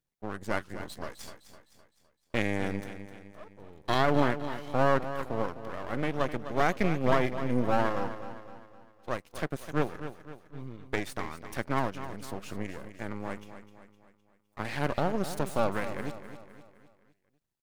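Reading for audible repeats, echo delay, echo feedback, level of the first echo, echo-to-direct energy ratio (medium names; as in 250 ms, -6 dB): 4, 256 ms, 47%, -11.5 dB, -10.5 dB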